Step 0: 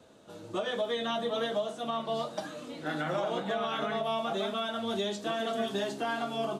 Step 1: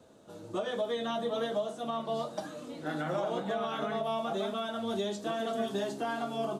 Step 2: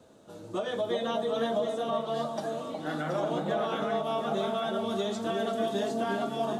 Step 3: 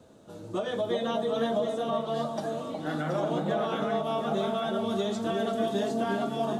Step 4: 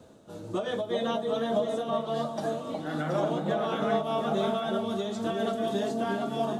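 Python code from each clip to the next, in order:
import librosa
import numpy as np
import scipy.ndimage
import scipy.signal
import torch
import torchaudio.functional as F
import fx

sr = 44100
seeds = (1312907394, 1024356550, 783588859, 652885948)

y1 = fx.peak_eq(x, sr, hz=2600.0, db=-5.5, octaves=2.0)
y2 = fx.echo_alternate(y1, sr, ms=363, hz=920.0, feedback_pct=51, wet_db=-2.5)
y2 = y2 * 10.0 ** (1.5 / 20.0)
y3 = fx.low_shelf(y2, sr, hz=240.0, db=5.5)
y4 = fx.am_noise(y3, sr, seeds[0], hz=5.7, depth_pct=65)
y4 = y4 * 10.0 ** (3.0 / 20.0)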